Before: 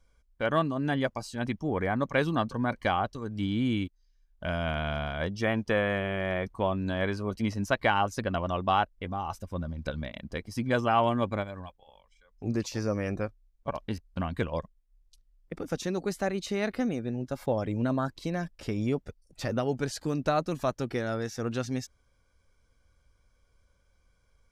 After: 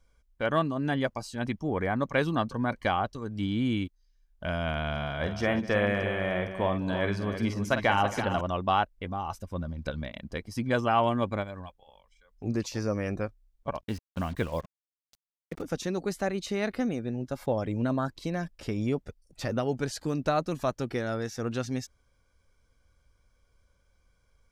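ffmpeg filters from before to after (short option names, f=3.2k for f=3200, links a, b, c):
-filter_complex "[0:a]asettb=1/sr,asplit=3[a][b][c];[a]atrim=end=4.914[d];[b]atrim=start=4.91:end=8.41,asetpts=PTS-STARTPTS,afade=t=in:d=0.004:c=qsin,afade=t=out:st=3.496:d=0.004:c=qsin,aecho=1:1:49|192|269|327:0.355|0.112|0.141|0.335,atrim=end_sample=154350[e];[c]atrim=start=8.406[f];[d][e]acrossfade=d=0.004:c1=hsin:c2=qsin[g];[g][f]acrossfade=d=0.004:c1=qsin:c2=hsin,asettb=1/sr,asplit=3[h][i][j];[h]atrim=end=13.814[k];[i]atrim=start=13.81:end=15.62,asetpts=PTS-STARTPTS,afade=t=in:d=0.004:c=qsin,afade=t=out:st=1.806:d=0.004:c=qsin,acrusher=bits=7:mix=0:aa=0.5[l];[j]atrim=start=15.616[m];[k][l]acrossfade=d=0.004:c1=hsin:c2=qsin[n];[n][m]acrossfade=d=0.004:c1=qsin:c2=hsin"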